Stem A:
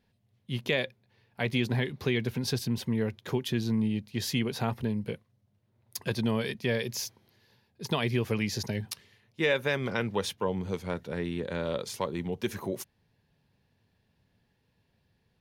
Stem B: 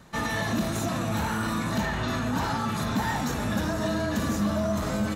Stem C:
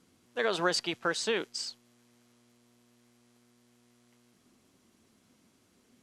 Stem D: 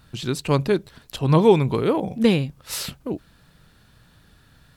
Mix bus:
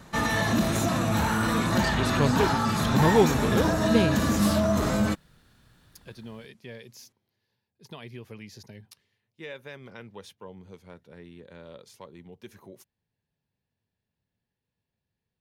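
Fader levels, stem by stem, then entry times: -14.0 dB, +3.0 dB, -6.5 dB, -5.5 dB; 0.00 s, 0.00 s, 1.10 s, 1.70 s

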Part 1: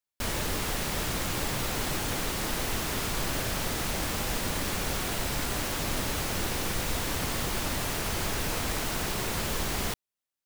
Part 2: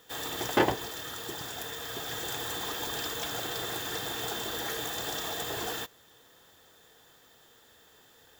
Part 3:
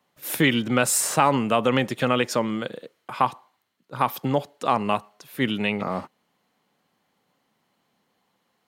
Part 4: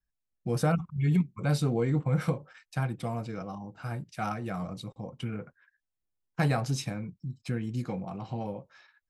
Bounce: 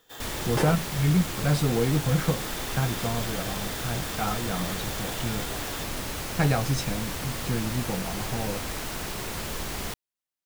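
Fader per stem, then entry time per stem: -2.5 dB, -5.0 dB, mute, +3.0 dB; 0.00 s, 0.00 s, mute, 0.00 s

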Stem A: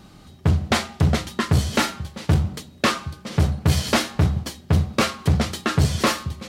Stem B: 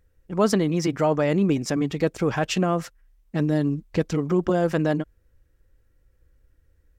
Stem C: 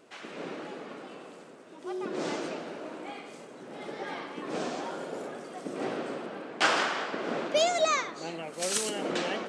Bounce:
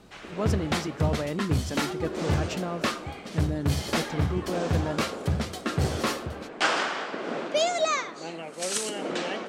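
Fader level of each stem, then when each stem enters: -8.0 dB, -9.5 dB, +0.5 dB; 0.00 s, 0.00 s, 0.00 s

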